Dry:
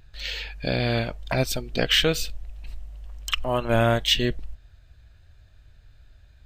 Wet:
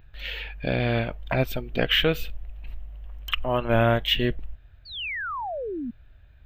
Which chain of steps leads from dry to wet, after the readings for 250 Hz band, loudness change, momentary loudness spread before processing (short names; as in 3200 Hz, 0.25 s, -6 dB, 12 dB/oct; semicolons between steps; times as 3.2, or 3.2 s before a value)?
+0.5 dB, -1.5 dB, 22 LU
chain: painted sound fall, 4.85–5.91, 220–4700 Hz -31 dBFS; band shelf 6900 Hz -16 dB